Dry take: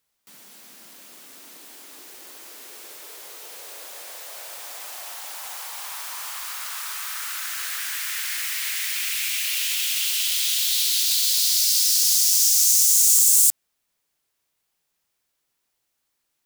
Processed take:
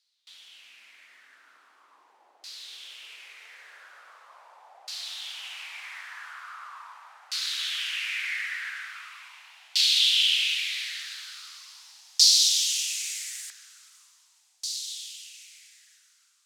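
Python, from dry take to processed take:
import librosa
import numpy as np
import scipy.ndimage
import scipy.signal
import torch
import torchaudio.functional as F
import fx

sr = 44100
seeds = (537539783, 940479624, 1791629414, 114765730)

y = np.diff(x, prepend=0.0)
y = fx.echo_diffused(y, sr, ms=600, feedback_pct=71, wet_db=-12.0)
y = fx.filter_lfo_lowpass(y, sr, shape='saw_down', hz=0.41, low_hz=740.0, high_hz=4500.0, q=4.2)
y = F.gain(torch.from_numpy(y), 4.0).numpy()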